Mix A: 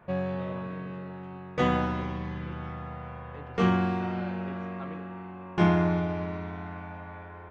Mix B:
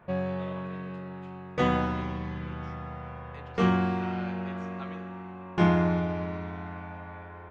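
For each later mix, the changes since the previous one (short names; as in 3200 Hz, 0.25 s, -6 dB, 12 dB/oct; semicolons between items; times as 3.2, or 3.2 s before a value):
speech: add tilt +4.5 dB/oct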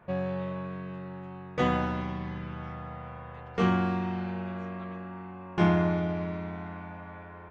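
speech -6.5 dB; reverb: off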